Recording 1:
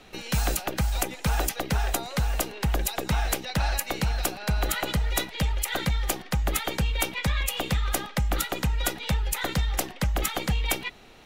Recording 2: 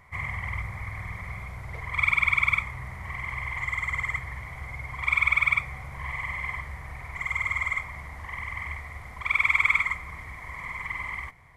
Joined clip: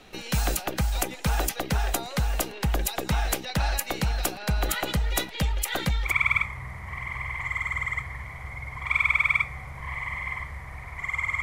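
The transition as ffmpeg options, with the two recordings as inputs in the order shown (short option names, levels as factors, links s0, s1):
-filter_complex "[0:a]apad=whole_dur=11.42,atrim=end=11.42,atrim=end=6.14,asetpts=PTS-STARTPTS[s0];[1:a]atrim=start=2.19:end=7.59,asetpts=PTS-STARTPTS[s1];[s0][s1]acrossfade=d=0.12:c1=tri:c2=tri"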